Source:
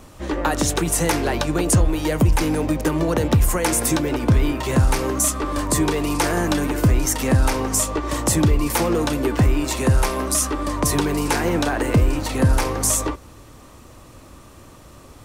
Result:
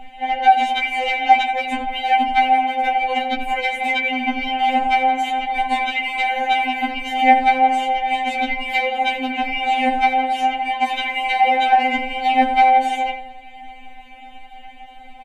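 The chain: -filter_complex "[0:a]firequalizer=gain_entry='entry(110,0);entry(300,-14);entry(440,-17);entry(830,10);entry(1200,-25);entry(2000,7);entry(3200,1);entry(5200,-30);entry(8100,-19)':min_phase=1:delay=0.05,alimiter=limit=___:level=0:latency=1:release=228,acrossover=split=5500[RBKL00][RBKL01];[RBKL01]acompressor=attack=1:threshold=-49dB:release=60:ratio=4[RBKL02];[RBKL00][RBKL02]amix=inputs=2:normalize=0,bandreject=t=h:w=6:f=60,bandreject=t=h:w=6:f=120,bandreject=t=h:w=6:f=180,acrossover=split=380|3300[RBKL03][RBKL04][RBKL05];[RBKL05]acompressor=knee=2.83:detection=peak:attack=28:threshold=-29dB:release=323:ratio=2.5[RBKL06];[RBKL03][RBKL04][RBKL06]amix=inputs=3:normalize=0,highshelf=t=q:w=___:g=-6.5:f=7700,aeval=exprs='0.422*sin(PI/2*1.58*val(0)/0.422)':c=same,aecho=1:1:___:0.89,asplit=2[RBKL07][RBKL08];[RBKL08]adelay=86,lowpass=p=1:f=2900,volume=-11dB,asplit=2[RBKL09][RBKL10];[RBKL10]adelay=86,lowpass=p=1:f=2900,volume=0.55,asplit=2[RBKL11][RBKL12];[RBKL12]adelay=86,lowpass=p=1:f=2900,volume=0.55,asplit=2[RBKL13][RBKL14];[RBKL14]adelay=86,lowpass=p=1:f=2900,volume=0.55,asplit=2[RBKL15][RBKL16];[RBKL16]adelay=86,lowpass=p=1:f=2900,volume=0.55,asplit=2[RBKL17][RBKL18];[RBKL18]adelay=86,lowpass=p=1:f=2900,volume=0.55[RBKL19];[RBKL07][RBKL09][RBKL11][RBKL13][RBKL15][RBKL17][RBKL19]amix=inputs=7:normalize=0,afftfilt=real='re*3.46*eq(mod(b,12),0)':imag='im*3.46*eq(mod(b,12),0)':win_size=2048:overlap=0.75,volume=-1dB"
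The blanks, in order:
-10.5dB, 1.5, 5.2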